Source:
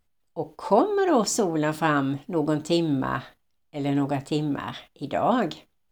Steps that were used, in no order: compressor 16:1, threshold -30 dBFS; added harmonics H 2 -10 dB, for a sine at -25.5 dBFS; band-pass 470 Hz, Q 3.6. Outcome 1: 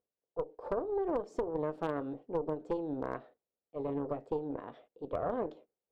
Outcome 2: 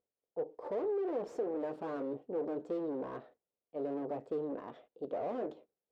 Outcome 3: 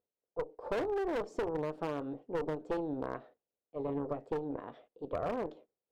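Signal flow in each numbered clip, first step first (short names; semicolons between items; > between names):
band-pass > compressor > added harmonics; added harmonics > band-pass > compressor; band-pass > added harmonics > compressor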